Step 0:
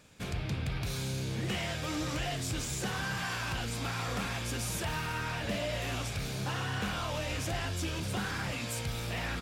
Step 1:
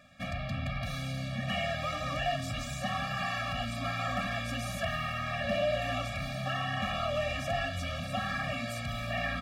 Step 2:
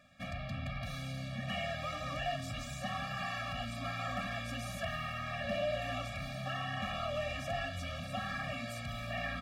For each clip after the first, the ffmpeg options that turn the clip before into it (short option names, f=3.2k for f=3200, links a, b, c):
-af "bass=f=250:g=-9,treble=f=4k:g=-14,bandreject=f=50:t=h:w=6,bandreject=f=100:t=h:w=6,bandreject=f=150:t=h:w=6,bandreject=f=200:t=h:w=6,afftfilt=real='re*eq(mod(floor(b*sr/1024/270),2),0)':imag='im*eq(mod(floor(b*sr/1024/270),2),0)':win_size=1024:overlap=0.75,volume=8dB"
-af "aeval=exprs='0.112*(cos(1*acos(clip(val(0)/0.112,-1,1)))-cos(1*PI/2))+0.00126*(cos(4*acos(clip(val(0)/0.112,-1,1)))-cos(4*PI/2))':c=same,volume=-5dB"